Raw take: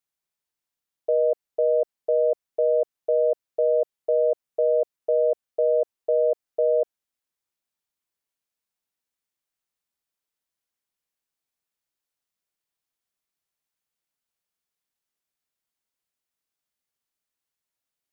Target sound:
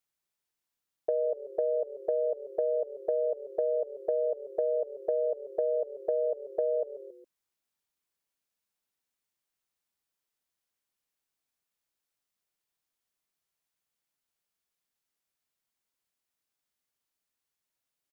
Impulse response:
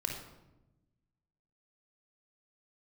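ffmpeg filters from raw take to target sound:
-filter_complex "[0:a]asplit=4[a][b][c][d];[b]adelay=137,afreqshift=-40,volume=-18.5dB[e];[c]adelay=274,afreqshift=-80,volume=-25.8dB[f];[d]adelay=411,afreqshift=-120,volume=-33.2dB[g];[a][e][f][g]amix=inputs=4:normalize=0,acompressor=threshold=-26dB:ratio=6"

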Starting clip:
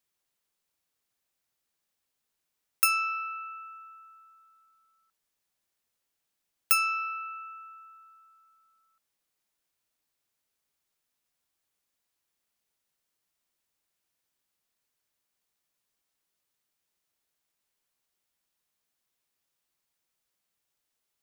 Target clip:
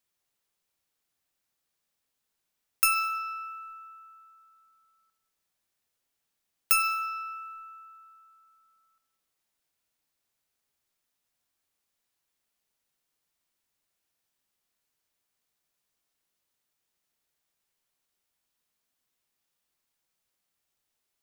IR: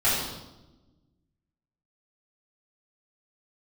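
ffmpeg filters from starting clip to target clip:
-filter_complex "[0:a]acrusher=bits=9:mode=log:mix=0:aa=0.000001,aeval=exprs='0.398*(cos(1*acos(clip(val(0)/0.398,-1,1)))-cos(1*PI/2))+0.00398*(cos(8*acos(clip(val(0)/0.398,-1,1)))-cos(8*PI/2))':c=same,asplit=2[a][b];[1:a]atrim=start_sample=2205,adelay=18[c];[b][c]afir=irnorm=-1:irlink=0,volume=-21.5dB[d];[a][d]amix=inputs=2:normalize=0"

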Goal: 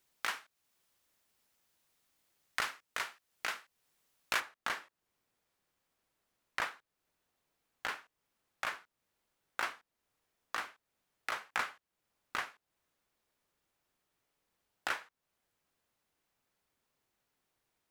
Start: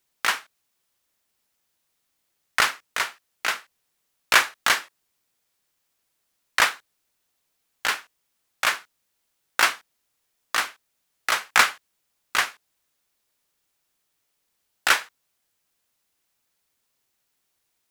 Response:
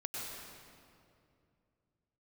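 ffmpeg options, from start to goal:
-af "asetnsamples=n=441:p=0,asendcmd='4.4 highshelf g -11.5',highshelf=f=2.6k:g=-2.5,acompressor=threshold=-43dB:ratio=2"

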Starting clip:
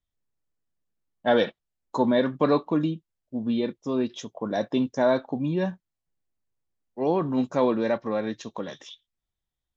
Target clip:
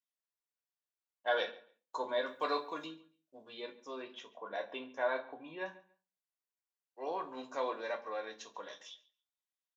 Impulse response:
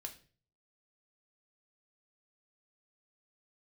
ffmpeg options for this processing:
-filter_complex "[0:a]asettb=1/sr,asplit=3[a][b][c];[a]atrim=end=2.264[d];[b]atrim=start=2.26:end=2.87,asetpts=PTS-STARTPTS,afade=t=in:d=0.004:c=qsin,afade=t=out:st=0.606:d=0.004:c=qsin,aemphasis=mode=production:type=75kf[e];[c]atrim=start=2.866[f];[d][e]acrossfade=d=0.004:c1=hsin:c2=qsin[g];[g][f]acrossfade=d=0.004:c1=qsin:c2=hsin,highpass=730,asettb=1/sr,asplit=3[h][i][j];[h]atrim=end=4.024[k];[i]atrim=start=4.02:end=5.66,asetpts=PTS-STARTPTS,afade=t=in:d=0.004:c=qsin,afade=t=out:st=1.636:d=0.004:c=qsin,highshelf=f=3.9k:t=q:w=1.5:g=-11.5[l];[j]atrim=start=5.656[m];[k][l]acrossfade=d=0.004:c1=hsin:c2=qsin[n];[n][m]acrossfade=d=0.004:c1=qsin:c2=hsin,asplit=2[o][p];[p]adelay=140,lowpass=f=4.1k:p=1,volume=-19.5dB,asplit=2[q][r];[r]adelay=140,lowpass=f=4.1k:p=1,volume=0.21[s];[o][q][s]amix=inputs=3:normalize=0[t];[1:a]atrim=start_sample=2205,asetrate=70560,aresample=44100[u];[t][u]afir=irnorm=-1:irlink=0,volume=1dB"

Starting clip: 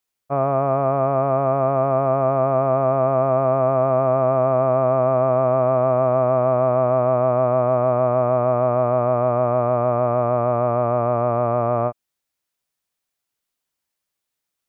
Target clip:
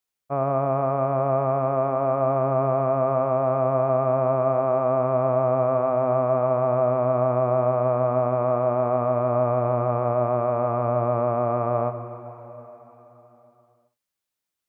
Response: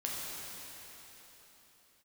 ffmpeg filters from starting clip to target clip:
-filter_complex "[0:a]asplit=2[a][b];[1:a]atrim=start_sample=2205,adelay=81[c];[b][c]afir=irnorm=-1:irlink=0,volume=-13dB[d];[a][d]amix=inputs=2:normalize=0,volume=-4dB"

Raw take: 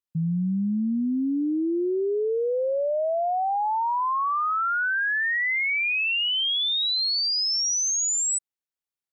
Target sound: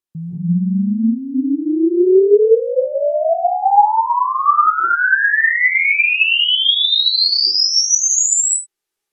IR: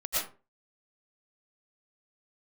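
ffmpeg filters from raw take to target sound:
-filter_complex "[0:a]asetnsamples=n=441:p=0,asendcmd='4.66 equalizer g 14;7.29 equalizer g 6.5',equalizer=f=350:w=3.6:g=7.5,alimiter=level_in=2dB:limit=-24dB:level=0:latency=1:release=365,volume=-2dB[a];[1:a]atrim=start_sample=2205,afade=t=out:st=0.22:d=0.01,atrim=end_sample=10143,asetrate=27783,aresample=44100[b];[a][b]afir=irnorm=-1:irlink=0,volume=3.5dB"

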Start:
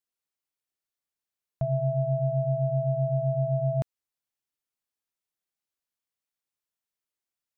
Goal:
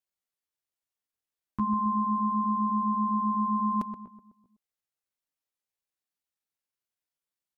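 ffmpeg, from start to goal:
-filter_complex "[0:a]asplit=2[a][b];[b]adelay=126,lowpass=f=830:p=1,volume=-8dB,asplit=2[c][d];[d]adelay=126,lowpass=f=830:p=1,volume=0.49,asplit=2[e][f];[f]adelay=126,lowpass=f=830:p=1,volume=0.49,asplit=2[g][h];[h]adelay=126,lowpass=f=830:p=1,volume=0.49,asplit=2[i][j];[j]adelay=126,lowpass=f=830:p=1,volume=0.49,asplit=2[k][l];[l]adelay=126,lowpass=f=830:p=1,volume=0.49[m];[a][c][e][g][i][k][m]amix=inputs=7:normalize=0,asetrate=70004,aresample=44100,atempo=0.629961"

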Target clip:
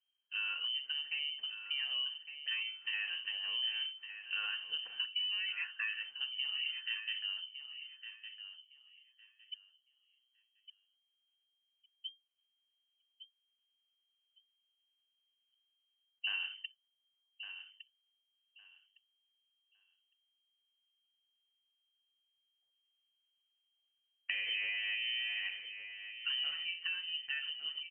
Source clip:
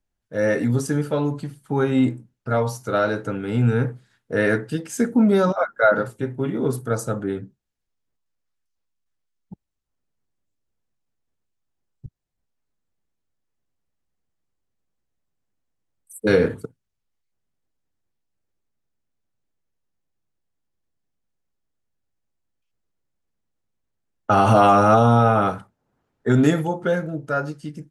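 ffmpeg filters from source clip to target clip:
-af "acompressor=threshold=-29dB:ratio=6,lowpass=f=2.7k:t=q:w=0.5098,lowpass=f=2.7k:t=q:w=0.6013,lowpass=f=2.7k:t=q:w=0.9,lowpass=f=2.7k:t=q:w=2.563,afreqshift=-3200,aemphasis=mode=production:type=50fm,aecho=1:1:1159|2318|3477:0.299|0.0597|0.0119,volume=-9dB"

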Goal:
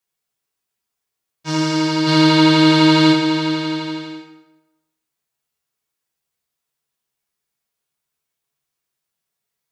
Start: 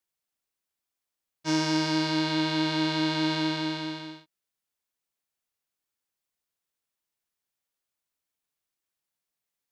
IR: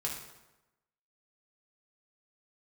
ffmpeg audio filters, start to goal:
-filter_complex "[0:a]asplit=3[a][b][c];[a]afade=t=out:st=2.06:d=0.02[d];[b]acontrast=87,afade=t=in:st=2.06:d=0.02,afade=t=out:st=3.11:d=0.02[e];[c]afade=t=in:st=3.11:d=0.02[f];[d][e][f]amix=inputs=3:normalize=0[g];[1:a]atrim=start_sample=2205[h];[g][h]afir=irnorm=-1:irlink=0,volume=4dB"

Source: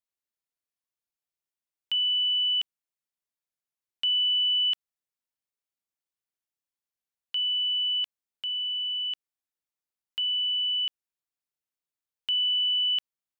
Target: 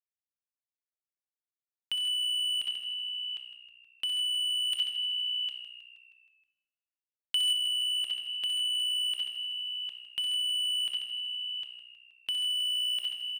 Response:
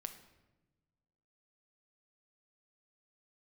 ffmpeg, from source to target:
-filter_complex "[0:a]dynaudnorm=f=330:g=11:m=14dB,aeval=exprs='sgn(val(0))*max(abs(val(0))-0.00668,0)':c=same,alimiter=limit=-23dB:level=0:latency=1,aecho=1:1:61|66|91|137|142|755:0.398|0.422|0.282|0.335|0.133|0.282,volume=25.5dB,asoftclip=hard,volume=-25.5dB[a];[1:a]atrim=start_sample=2205[b];[a][b]afir=irnorm=-1:irlink=0,acompressor=threshold=-39dB:ratio=2,asettb=1/sr,asplit=3[c][d][e];[c]atrim=end=4.724[f];[d]atrim=start=4.72:end=7.53,asetpts=PTS-STARTPTS,afade=t=in:d=0.004:c=qsin,afade=t=out:st=2.806:d=0.004:c=qsin,highshelf=f=2.8k:g=7.5[g];[e]atrim=start=7.526[h];[f][g]acrossfade=d=0.004:c1=hsin:c2=qsin[i];[i][h]acrossfade=d=0.004:c1=qsin:c2=hsin,asplit=7[j][k][l][m][n][o][p];[k]adelay=158,afreqshift=-61,volume=-13dB[q];[l]adelay=316,afreqshift=-122,volume=-17.7dB[r];[m]adelay=474,afreqshift=-183,volume=-22.5dB[s];[n]adelay=632,afreqshift=-244,volume=-27.2dB[t];[o]adelay=790,afreqshift=-305,volume=-31.9dB[u];[p]adelay=948,afreqshift=-366,volume=-36.7dB[v];[j][q][r][s][t][u][v]amix=inputs=7:normalize=0,volume=5.5dB"

